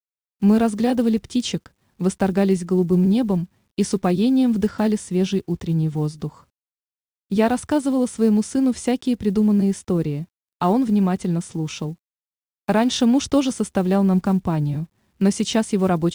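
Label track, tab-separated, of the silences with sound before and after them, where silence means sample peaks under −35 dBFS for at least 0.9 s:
6.290000	7.310000	silence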